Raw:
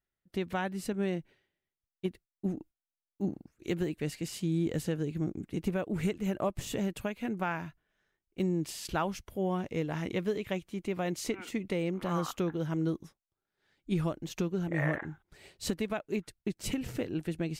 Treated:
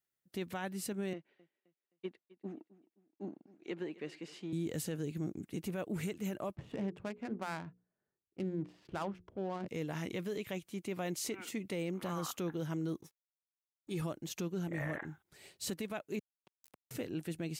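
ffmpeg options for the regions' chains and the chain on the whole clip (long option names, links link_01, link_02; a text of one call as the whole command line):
ffmpeg -i in.wav -filter_complex "[0:a]asettb=1/sr,asplit=3[link_01][link_02][link_03];[link_01]atrim=end=1.134[link_04];[link_02]atrim=start=1.13:end=4.53,asetpts=PTS-STARTPTS,afade=type=in:duration=0.004:curve=qsin,afade=type=out:start_time=3.396:duration=0.004:curve=qsin,aeval=exprs='if(lt(val(0),0),0.708*val(0),val(0))':channel_layout=same,highpass=280,lowpass=2800,aecho=1:1:261|522|783:0.1|0.037|0.0137,atrim=end_sample=149940[link_05];[link_03]atrim=start=4.526[link_06];[link_04][link_05]acrossfade=duration=0.004:curve1=hsin:curve2=qsin[link_07];[link_07][link_06]acrossfade=duration=0.004:curve1=qsin:curve2=hsin,asettb=1/sr,asplit=3[link_08][link_09][link_10];[link_08]atrim=end=6.554[link_11];[link_09]atrim=start=6.55:end=9.68,asetpts=PTS-STARTPTS,afade=type=in:duration=0.004:curve=qsin,afade=type=out:start_time=3.126:duration=0.004:curve=qsin,highshelf=frequency=5700:gain=-10,adynamicsmooth=sensitivity=7:basefreq=870,bandreject=frequency=60:width_type=h:width=6,bandreject=frequency=120:width_type=h:width=6,bandreject=frequency=180:width_type=h:width=6,bandreject=frequency=240:width_type=h:width=6,bandreject=frequency=300:width_type=h:width=6,bandreject=frequency=360:width_type=h:width=6,bandreject=frequency=420:width_type=h:width=6,bandreject=frequency=480:width_type=h:width=6[link_12];[link_10]atrim=start=9.676[link_13];[link_11][link_12]acrossfade=duration=0.004:curve1=hsin:curve2=qsin[link_14];[link_14][link_13]acrossfade=duration=0.004:curve1=qsin:curve2=hsin,asettb=1/sr,asplit=3[link_15][link_16][link_17];[link_15]atrim=end=13.014[link_18];[link_16]atrim=start=13.01:end=14.02,asetpts=PTS-STARTPTS,afade=type=in:duration=0.004:curve=qsin,afade=type=out:start_time=1.006:duration=0.004:curve=qsin,aeval=exprs='sgn(val(0))*max(abs(val(0))-0.00112,0)':channel_layout=same,bandreject=frequency=1400:width=12,aecho=1:1:2.3:0.49,atrim=end_sample=44541[link_19];[link_17]atrim=start=14.016[link_20];[link_18][link_19]acrossfade=duration=0.004:curve1=hsin:curve2=qsin[link_21];[link_21][link_20]acrossfade=duration=0.004:curve1=qsin:curve2=hsin,asettb=1/sr,asplit=3[link_22][link_23][link_24];[link_22]atrim=end=16.194[link_25];[link_23]atrim=start=16.19:end=16.91,asetpts=PTS-STARTPTS,afade=type=in:duration=0.004:curve=qsin,afade=type=out:start_time=0.716:duration=0.004:curve=qsin,afreqshift=-14,acompressor=threshold=-33dB:ratio=2.5:attack=3.2:release=140:knee=1:detection=peak,acrusher=bits=3:mix=0:aa=0.5[link_26];[link_24]atrim=start=16.906[link_27];[link_25][link_26]acrossfade=duration=0.004:curve1=hsin:curve2=qsin[link_28];[link_28][link_27]acrossfade=duration=0.004:curve1=qsin:curve2=hsin,highpass=100,highshelf=frequency=5300:gain=9.5,alimiter=level_in=1.5dB:limit=-24dB:level=0:latency=1:release=10,volume=-1.5dB,volume=-4dB" out.wav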